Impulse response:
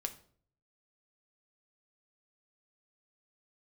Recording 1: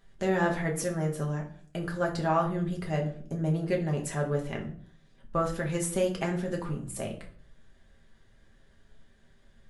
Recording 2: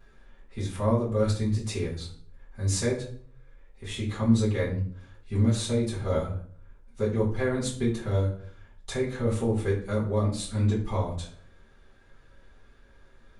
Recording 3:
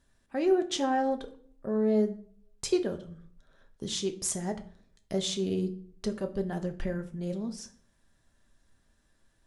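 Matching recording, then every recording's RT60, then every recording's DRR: 3; 0.55, 0.55, 0.55 seconds; −1.0, −10.5, 6.0 decibels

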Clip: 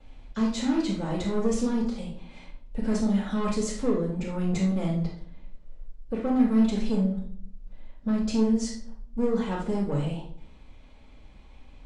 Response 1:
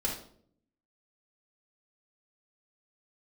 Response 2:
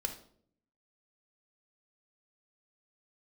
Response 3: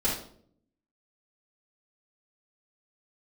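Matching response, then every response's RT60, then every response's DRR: 3; 0.60, 0.60, 0.60 seconds; −4.0, 4.0, −9.5 decibels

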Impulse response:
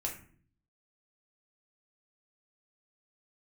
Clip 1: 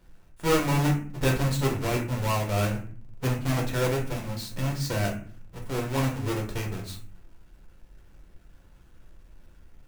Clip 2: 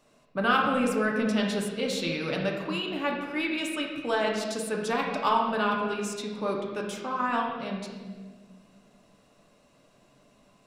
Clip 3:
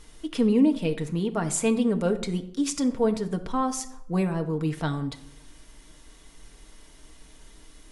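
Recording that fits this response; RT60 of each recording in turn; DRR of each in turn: 1; 0.50, 1.6, 0.75 seconds; −1.0, −1.0, 5.0 decibels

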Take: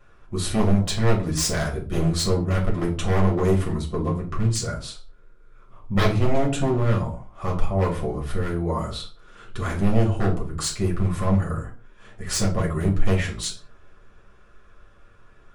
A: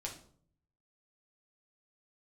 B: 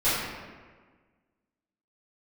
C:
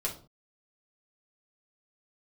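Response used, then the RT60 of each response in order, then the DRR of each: C; 0.55, 1.5, 0.40 seconds; −1.5, −16.0, −3.0 decibels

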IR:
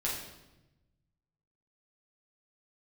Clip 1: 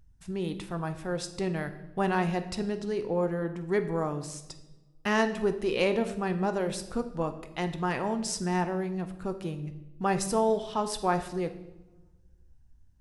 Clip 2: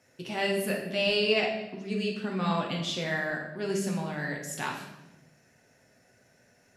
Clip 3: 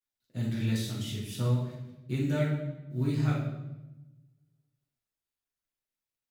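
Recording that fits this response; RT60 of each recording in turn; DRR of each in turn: 3; 1.0, 1.0, 1.0 seconds; 8.0, −1.5, −6.5 decibels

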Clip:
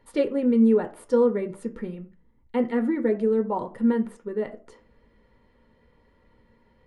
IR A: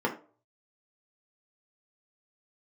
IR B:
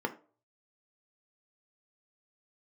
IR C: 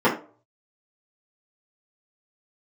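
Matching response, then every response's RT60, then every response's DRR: B; 0.40, 0.40, 0.40 seconds; −1.0, 4.5, −10.0 decibels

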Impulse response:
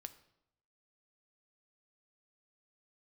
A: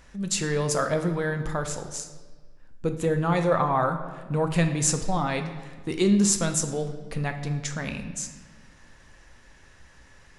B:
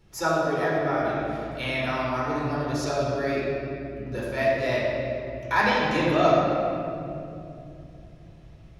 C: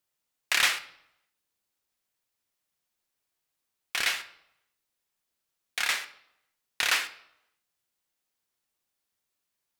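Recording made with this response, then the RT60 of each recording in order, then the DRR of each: C; 1.5, 2.6, 0.80 seconds; 6.0, −6.5, 10.0 decibels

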